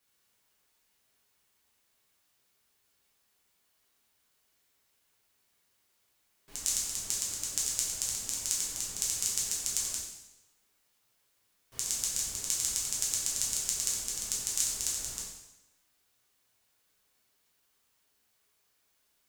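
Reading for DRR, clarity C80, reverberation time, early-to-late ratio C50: -6.0 dB, 5.0 dB, 1.0 s, 2.0 dB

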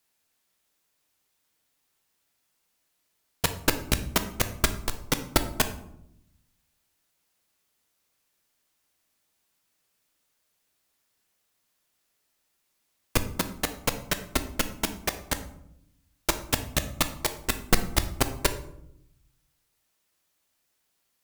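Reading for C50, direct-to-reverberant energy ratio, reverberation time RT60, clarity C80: 12.0 dB, 8.0 dB, 0.80 s, 15.0 dB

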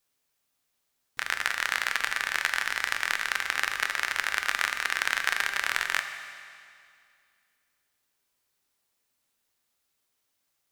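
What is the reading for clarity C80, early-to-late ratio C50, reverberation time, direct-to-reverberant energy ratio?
9.0 dB, 8.0 dB, 2.3 s, 6.5 dB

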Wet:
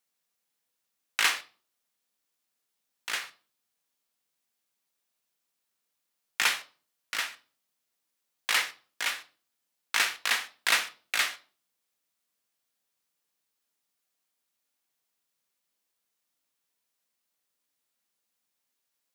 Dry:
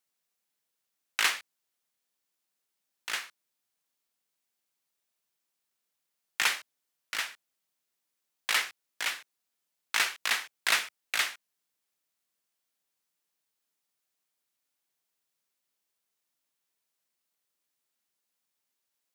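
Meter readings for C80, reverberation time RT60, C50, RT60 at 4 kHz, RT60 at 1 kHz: 22.0 dB, 0.40 s, 17.0 dB, 0.35 s, 0.35 s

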